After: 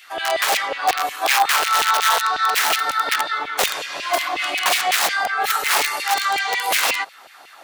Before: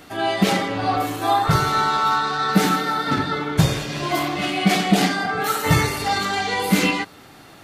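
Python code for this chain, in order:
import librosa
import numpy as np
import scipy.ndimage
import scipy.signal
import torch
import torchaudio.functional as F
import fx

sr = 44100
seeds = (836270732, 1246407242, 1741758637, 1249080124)

y = (np.mod(10.0 ** (13.0 / 20.0) * x + 1.0, 2.0) - 1.0) / 10.0 ** (13.0 / 20.0)
y = fx.filter_lfo_highpass(y, sr, shape='saw_down', hz=5.5, low_hz=520.0, high_hz=2700.0, q=2.2)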